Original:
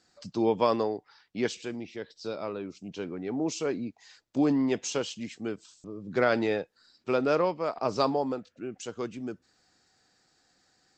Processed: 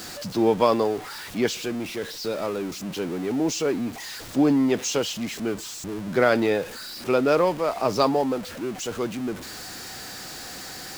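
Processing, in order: jump at every zero crossing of -36.5 dBFS; trim +4.5 dB

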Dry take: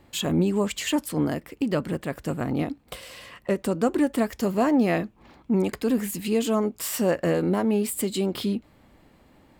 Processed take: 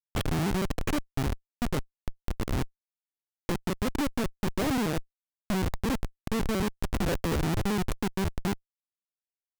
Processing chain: pitch shift switched off and on -2 st, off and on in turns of 77 ms; Schmitt trigger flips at -21.5 dBFS

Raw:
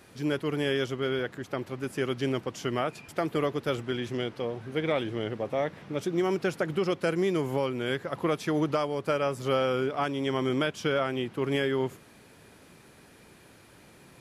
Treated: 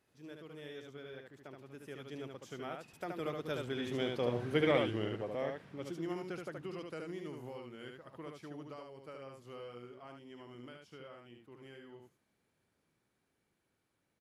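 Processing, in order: Doppler pass-by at 4.44 s, 17 m/s, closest 6.3 m; delay 74 ms -4 dB; trim -1 dB

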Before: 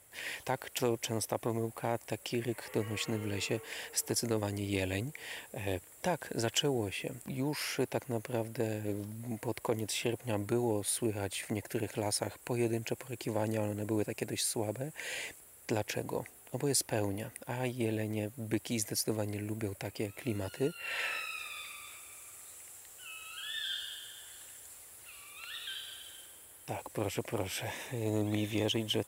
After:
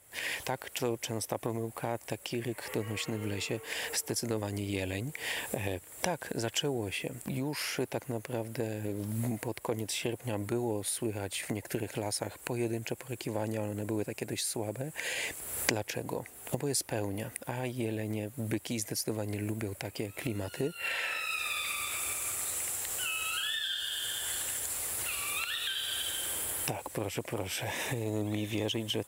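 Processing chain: recorder AGC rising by 46 dB/s; trim -1 dB

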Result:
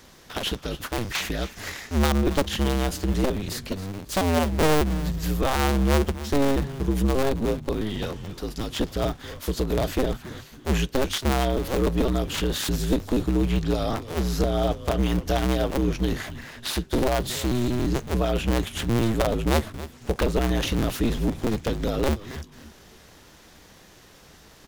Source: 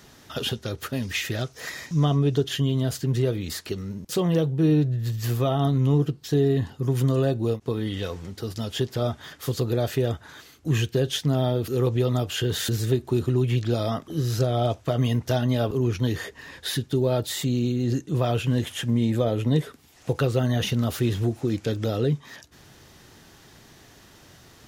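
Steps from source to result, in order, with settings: cycle switcher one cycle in 2, inverted; frequency-shifting echo 273 ms, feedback 32%, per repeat -150 Hz, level -14.5 dB

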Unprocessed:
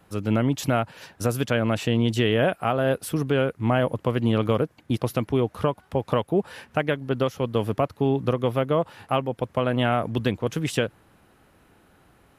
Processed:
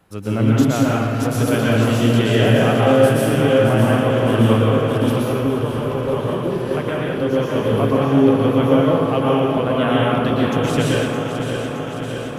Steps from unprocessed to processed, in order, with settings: backward echo that repeats 308 ms, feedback 84%, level -8 dB; 5.07–7.43 s: compression, threshold -22 dBFS, peak gain reduction 7.5 dB; plate-style reverb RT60 1.2 s, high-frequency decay 0.8×, pre-delay 105 ms, DRR -5 dB; trim -1 dB

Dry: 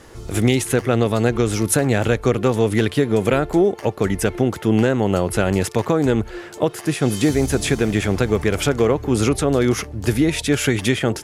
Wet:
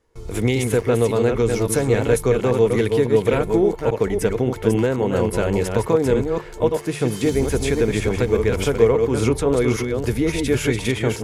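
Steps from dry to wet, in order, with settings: chunks repeated in reverse 279 ms, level -4.5 dB; gate with hold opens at -28 dBFS; bass shelf 74 Hz +11.5 dB; hum notches 50/100/150 Hz; small resonant body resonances 460/960/2200 Hz, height 9 dB, ringing for 40 ms; trim -5.5 dB

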